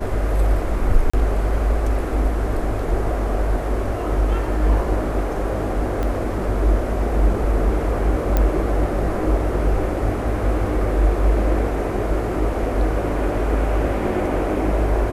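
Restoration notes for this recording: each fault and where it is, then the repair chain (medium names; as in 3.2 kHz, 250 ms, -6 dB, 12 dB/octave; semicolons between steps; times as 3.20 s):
1.10–1.14 s: dropout 35 ms
6.03 s: pop -13 dBFS
8.37 s: pop -6 dBFS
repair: de-click; interpolate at 1.10 s, 35 ms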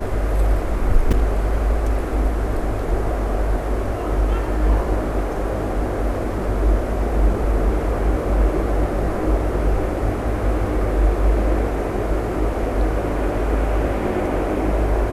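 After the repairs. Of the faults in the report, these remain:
6.03 s: pop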